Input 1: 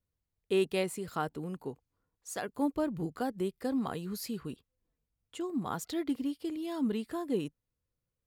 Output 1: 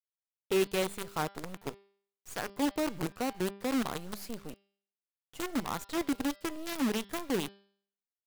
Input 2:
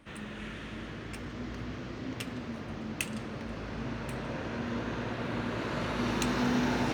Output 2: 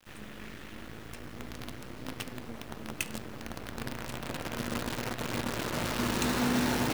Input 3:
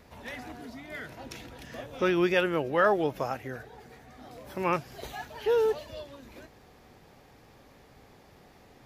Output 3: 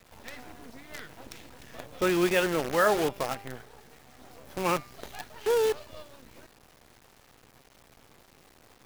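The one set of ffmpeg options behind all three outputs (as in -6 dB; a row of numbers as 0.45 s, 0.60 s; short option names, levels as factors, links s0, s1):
-af "acrusher=bits=6:dc=4:mix=0:aa=0.000001,bandreject=f=198.7:t=h:w=4,bandreject=f=397.4:t=h:w=4,bandreject=f=596.1:t=h:w=4,bandreject=f=794.8:t=h:w=4,bandreject=f=993.5:t=h:w=4,bandreject=f=1192.2:t=h:w=4,bandreject=f=1390.9:t=h:w=4,bandreject=f=1589.6:t=h:w=4,bandreject=f=1788.3:t=h:w=4,bandreject=f=1987:t=h:w=4,bandreject=f=2185.7:t=h:w=4,bandreject=f=2384.4:t=h:w=4,bandreject=f=2583.1:t=h:w=4,bandreject=f=2781.8:t=h:w=4,bandreject=f=2980.5:t=h:w=4,bandreject=f=3179.2:t=h:w=4,bandreject=f=3377.9:t=h:w=4,bandreject=f=3576.6:t=h:w=4,bandreject=f=3775.3:t=h:w=4,bandreject=f=3974:t=h:w=4,bandreject=f=4172.7:t=h:w=4,bandreject=f=4371.4:t=h:w=4,bandreject=f=4570.1:t=h:w=4,bandreject=f=4768.8:t=h:w=4,bandreject=f=4967.5:t=h:w=4,bandreject=f=5166.2:t=h:w=4,bandreject=f=5364.9:t=h:w=4"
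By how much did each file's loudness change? +0.5 LU, +1.0 LU, +1.5 LU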